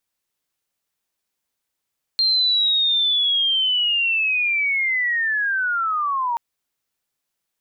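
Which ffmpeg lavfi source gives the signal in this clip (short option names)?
-f lavfi -i "aevalsrc='pow(10,(-15-4.5*t/4.18)/20)*sin(2*PI*(4200*t-3280*t*t/(2*4.18)))':d=4.18:s=44100"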